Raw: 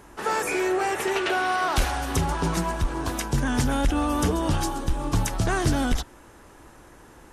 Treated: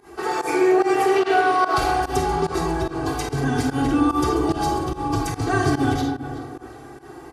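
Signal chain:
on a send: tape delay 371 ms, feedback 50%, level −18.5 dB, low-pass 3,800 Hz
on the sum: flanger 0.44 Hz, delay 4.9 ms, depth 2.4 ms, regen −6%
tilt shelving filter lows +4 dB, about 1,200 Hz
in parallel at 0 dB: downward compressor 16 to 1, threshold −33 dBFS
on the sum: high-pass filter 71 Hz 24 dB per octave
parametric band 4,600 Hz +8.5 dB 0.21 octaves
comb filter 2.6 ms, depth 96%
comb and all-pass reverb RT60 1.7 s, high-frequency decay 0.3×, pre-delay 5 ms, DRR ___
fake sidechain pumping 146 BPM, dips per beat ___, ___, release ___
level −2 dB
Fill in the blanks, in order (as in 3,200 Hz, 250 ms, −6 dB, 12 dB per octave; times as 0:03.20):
0 dB, 1, −19 dB, 104 ms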